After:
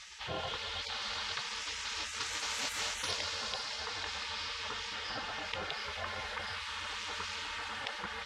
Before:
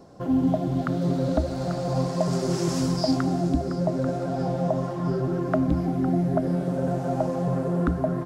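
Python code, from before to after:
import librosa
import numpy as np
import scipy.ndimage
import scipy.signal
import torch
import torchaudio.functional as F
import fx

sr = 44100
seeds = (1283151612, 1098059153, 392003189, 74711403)

y = fx.tracing_dist(x, sr, depth_ms=0.056)
y = scipy.signal.sosfilt(scipy.signal.butter(2, 130.0, 'highpass', fs=sr, output='sos'), y)
y = fx.peak_eq(y, sr, hz=3200.0, db=12.0, octaves=1.4)
y = y + 0.41 * np.pad(y, (int(2.8 * sr / 1000.0), 0))[:len(y)]
y = y + 10.0 ** (-21.0 / 20.0) * np.pad(y, (int(520 * sr / 1000.0), 0))[:len(y)]
y = fx.spec_gate(y, sr, threshold_db=-25, keep='weak')
y = scipy.signal.sosfilt(scipy.signal.butter(2, 5900.0, 'lowpass', fs=sr, output='sos'), y)
y = fx.env_flatten(y, sr, amount_pct=50)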